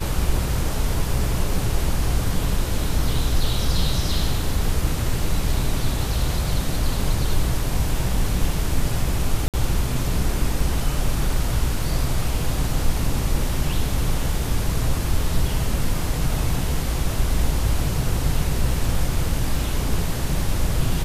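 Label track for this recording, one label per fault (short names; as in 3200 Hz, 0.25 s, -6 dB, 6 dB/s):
9.480000	9.540000	gap 57 ms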